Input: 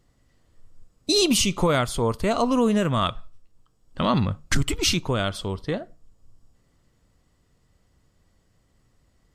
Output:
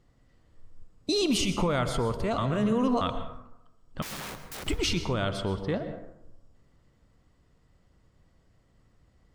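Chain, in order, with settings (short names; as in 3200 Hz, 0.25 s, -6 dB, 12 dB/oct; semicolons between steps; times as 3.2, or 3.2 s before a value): LPF 3400 Hz 6 dB/oct; 2.38–3.01 reverse; limiter -18.5 dBFS, peak gain reduction 7 dB; 4.02–4.68 wrapped overs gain 34.5 dB; plate-style reverb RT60 0.84 s, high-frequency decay 0.45×, pre-delay 0.105 s, DRR 9 dB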